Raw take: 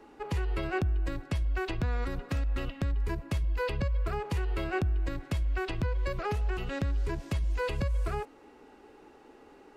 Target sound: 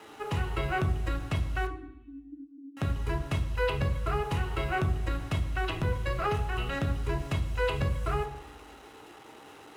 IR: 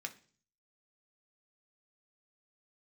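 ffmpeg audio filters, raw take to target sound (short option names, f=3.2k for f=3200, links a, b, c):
-filter_complex "[0:a]acrusher=bits=8:mix=0:aa=0.000001,asettb=1/sr,asplit=3[a][b][c];[a]atrim=end=1.674[d];[b]atrim=start=1.67:end=2.77,asetpts=PTS-STARTPTS,afade=t=in:d=0.004:c=qsin,afade=t=out:st=1.096:d=0.004:c=qsin,asuperpass=centerf=290:order=8:qfactor=5.4[e];[c]atrim=start=2.766[f];[d][e]acrossfade=d=0.004:c1=hsin:c2=qsin[g];[g][f]acrossfade=d=0.004:c1=qsin:c2=hsin[h];[1:a]atrim=start_sample=2205,asetrate=23373,aresample=44100[i];[h][i]afir=irnorm=-1:irlink=0,volume=2dB"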